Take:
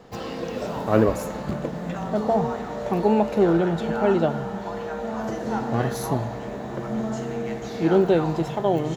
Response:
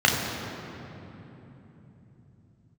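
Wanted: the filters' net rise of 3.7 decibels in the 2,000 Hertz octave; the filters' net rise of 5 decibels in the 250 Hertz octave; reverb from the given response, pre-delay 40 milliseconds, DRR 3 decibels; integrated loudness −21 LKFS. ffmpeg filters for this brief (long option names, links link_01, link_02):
-filter_complex "[0:a]equalizer=frequency=250:width_type=o:gain=7,equalizer=frequency=2000:width_type=o:gain=5,asplit=2[link_01][link_02];[1:a]atrim=start_sample=2205,adelay=40[link_03];[link_02][link_03]afir=irnorm=-1:irlink=0,volume=-22.5dB[link_04];[link_01][link_04]amix=inputs=2:normalize=0,volume=-2dB"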